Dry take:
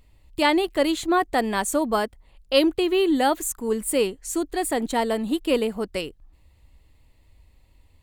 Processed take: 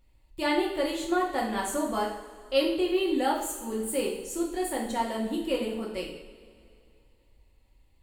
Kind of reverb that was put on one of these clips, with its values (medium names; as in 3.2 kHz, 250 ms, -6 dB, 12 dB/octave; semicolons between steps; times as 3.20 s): two-slope reverb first 0.62 s, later 2.7 s, from -17 dB, DRR -3 dB; trim -11 dB